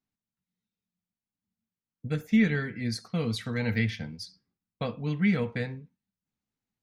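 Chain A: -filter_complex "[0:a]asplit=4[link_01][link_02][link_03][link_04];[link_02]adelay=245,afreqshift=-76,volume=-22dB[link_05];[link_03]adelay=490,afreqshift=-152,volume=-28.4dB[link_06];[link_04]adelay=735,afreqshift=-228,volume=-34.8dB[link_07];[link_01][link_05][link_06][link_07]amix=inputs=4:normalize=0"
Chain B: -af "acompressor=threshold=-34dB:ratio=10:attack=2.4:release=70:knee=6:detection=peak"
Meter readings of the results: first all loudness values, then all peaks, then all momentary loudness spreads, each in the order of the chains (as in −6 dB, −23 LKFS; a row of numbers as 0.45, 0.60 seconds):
−29.5, −40.0 LKFS; −13.5, −26.0 dBFS; 16, 7 LU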